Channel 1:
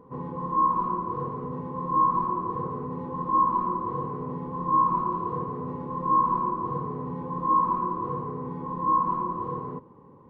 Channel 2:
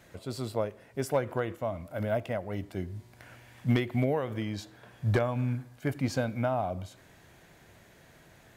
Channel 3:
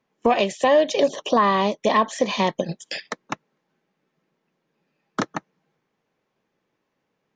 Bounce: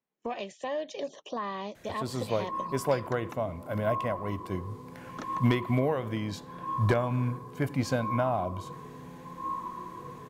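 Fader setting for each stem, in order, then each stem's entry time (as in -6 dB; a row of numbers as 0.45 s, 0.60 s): -12.5 dB, +1.0 dB, -16.5 dB; 1.95 s, 1.75 s, 0.00 s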